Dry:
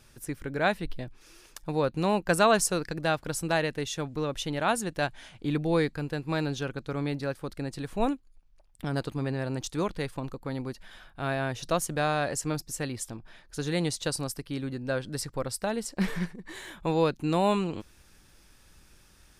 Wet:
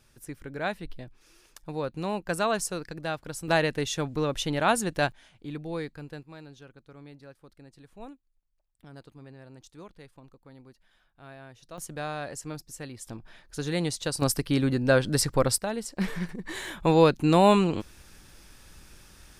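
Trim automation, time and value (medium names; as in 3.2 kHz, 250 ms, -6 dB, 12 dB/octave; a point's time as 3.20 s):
-5 dB
from 3.48 s +3 dB
from 5.12 s -8.5 dB
from 6.23 s -17 dB
from 11.78 s -7 dB
from 13.07 s 0 dB
from 14.22 s +9 dB
from 15.58 s -1 dB
from 16.29 s +6 dB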